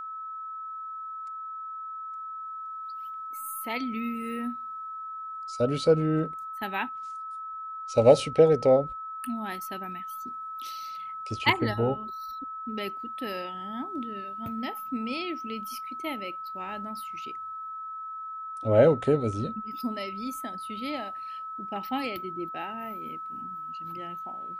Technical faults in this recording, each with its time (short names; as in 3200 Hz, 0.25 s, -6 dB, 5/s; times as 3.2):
tone 1300 Hz -35 dBFS